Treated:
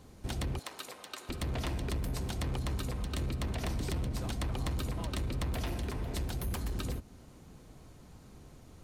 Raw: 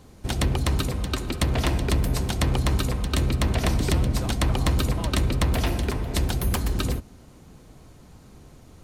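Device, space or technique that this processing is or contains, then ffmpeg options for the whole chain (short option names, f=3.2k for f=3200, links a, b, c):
soft clipper into limiter: -filter_complex "[0:a]asoftclip=type=tanh:threshold=-16dB,alimiter=limit=-23dB:level=0:latency=1:release=241,asettb=1/sr,asplit=3[a][b][c];[a]atrim=end=0.594[d];[b]atrim=start=0.59:end=1.29,asetpts=PTS-STARTPTS,afade=t=in:d=0.004:c=qsin,afade=t=out:st=0.696:d=0.004:c=qsin,highpass=620[e];[c]atrim=start=1.286[f];[d][e]acrossfade=d=0.004:c1=hsin:c2=qsin[g];[g][f]acrossfade=d=0.004:c1=qsin:c2=hsin,volume=-5dB"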